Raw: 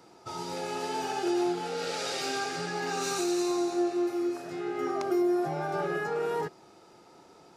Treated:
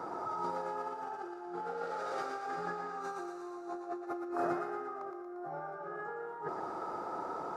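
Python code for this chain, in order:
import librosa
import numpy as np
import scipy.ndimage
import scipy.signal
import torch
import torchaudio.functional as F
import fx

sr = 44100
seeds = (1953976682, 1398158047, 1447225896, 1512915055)

y = fx.curve_eq(x, sr, hz=(130.0, 1300.0, 2600.0), db=(0, 14, -9))
y = fx.over_compress(y, sr, threshold_db=-35.0, ratio=-1.0)
y = fx.echo_thinned(y, sr, ms=116, feedback_pct=60, hz=630.0, wet_db=-5.5)
y = F.gain(torch.from_numpy(y), -5.5).numpy()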